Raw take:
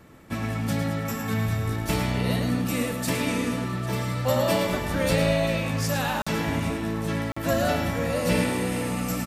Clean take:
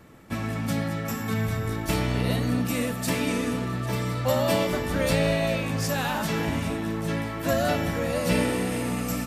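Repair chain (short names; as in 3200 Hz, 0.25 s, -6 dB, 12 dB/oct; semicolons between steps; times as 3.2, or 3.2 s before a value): interpolate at 6.22/7.32, 45 ms; inverse comb 0.108 s -8 dB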